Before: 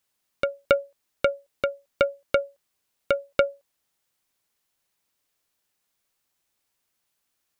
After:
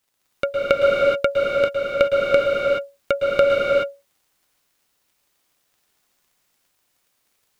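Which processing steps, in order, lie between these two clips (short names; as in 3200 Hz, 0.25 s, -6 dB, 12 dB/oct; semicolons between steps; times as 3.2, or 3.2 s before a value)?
crackle 45/s -54 dBFS; reverb, pre-delay 0.107 s, DRR -3.5 dB; gain +2 dB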